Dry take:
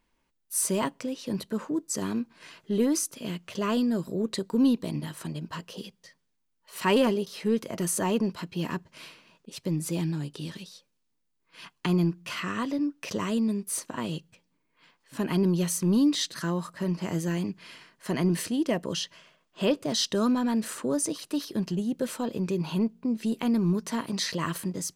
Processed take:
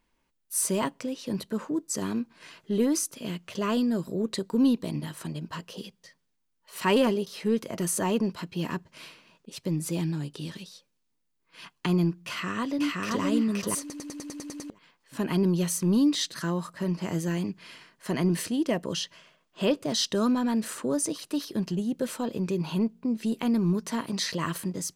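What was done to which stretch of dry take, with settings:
0:12.28–0:13.22: delay throw 520 ms, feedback 20%, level −0.5 dB
0:13.80: stutter in place 0.10 s, 9 plays

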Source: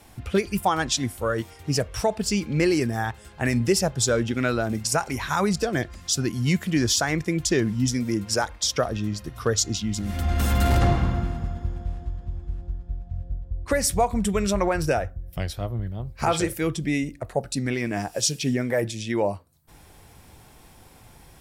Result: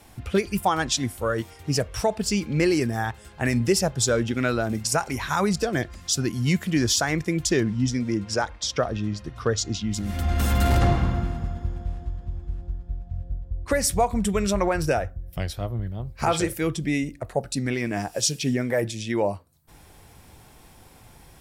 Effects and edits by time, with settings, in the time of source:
0:07.63–0:09.91: high-frequency loss of the air 72 metres

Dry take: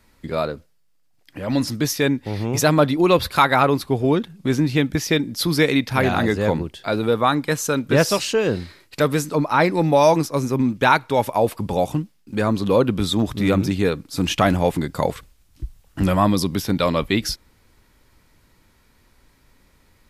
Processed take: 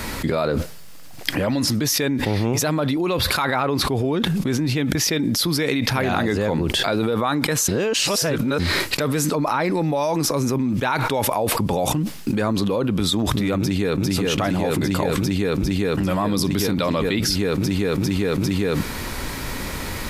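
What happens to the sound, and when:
0:03.45–0:03.88: high-shelf EQ 10,000 Hz −10 dB
0:07.68–0:08.59: reverse
0:13.57–0:14.05: delay throw 400 ms, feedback 85%, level −0.5 dB
whole clip: low-shelf EQ 63 Hz −6.5 dB; envelope flattener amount 100%; level −9.5 dB

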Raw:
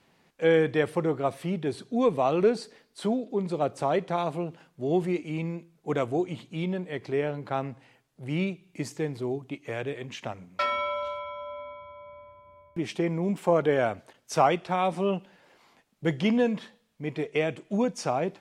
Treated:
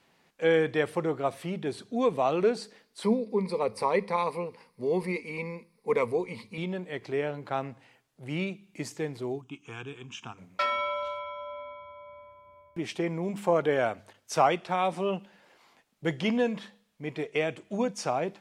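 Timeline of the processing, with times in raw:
0:03.03–0:06.58: EQ curve with evenly spaced ripples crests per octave 0.9, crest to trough 15 dB
0:09.41–0:10.38: phaser with its sweep stopped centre 2,900 Hz, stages 8
whole clip: low-shelf EQ 390 Hz −5 dB; hum removal 101 Hz, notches 2

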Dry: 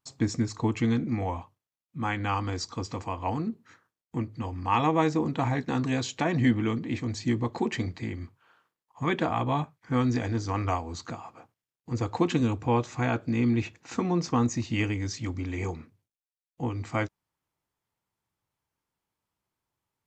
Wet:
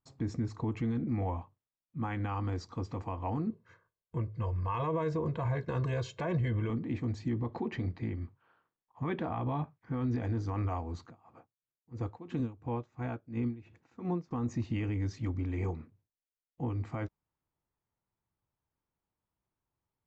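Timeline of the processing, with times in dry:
0:03.50–0:06.70: comb filter 1.9 ms, depth 84%
0:07.31–0:10.23: low-pass filter 6,100 Hz 24 dB per octave
0:11.01–0:14.31: tremolo with a sine in dB 2.9 Hz, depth 21 dB
whole clip: low-pass filter 1,200 Hz 6 dB per octave; low-shelf EQ 67 Hz +8.5 dB; brickwall limiter −21.5 dBFS; level −3 dB

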